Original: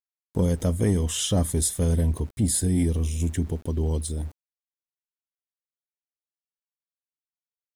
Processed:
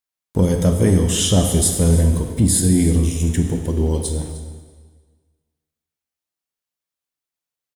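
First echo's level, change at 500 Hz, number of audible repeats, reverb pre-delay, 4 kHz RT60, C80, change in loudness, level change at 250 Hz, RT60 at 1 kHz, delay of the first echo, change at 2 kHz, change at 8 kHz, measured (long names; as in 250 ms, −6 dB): −17.5 dB, +8.0 dB, 1, 6 ms, 1.4 s, 7.0 dB, +7.5 dB, +8.5 dB, 1.5 s, 304 ms, +8.0 dB, +8.0 dB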